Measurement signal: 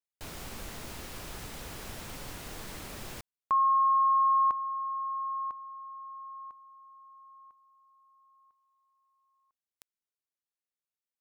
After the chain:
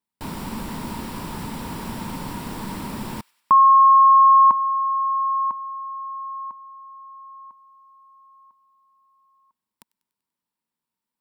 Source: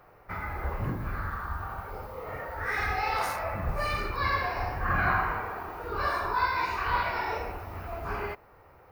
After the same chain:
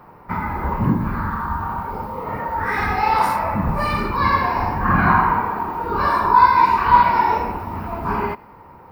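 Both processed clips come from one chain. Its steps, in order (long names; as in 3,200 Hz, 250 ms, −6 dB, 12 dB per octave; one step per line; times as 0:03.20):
notch filter 6,400 Hz, Q 6.3
hollow resonant body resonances 210/930 Hz, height 15 dB, ringing for 25 ms
on a send: delay with a high-pass on its return 97 ms, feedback 58%, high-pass 1,700 Hz, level −23.5 dB
on the sum: level +5 dB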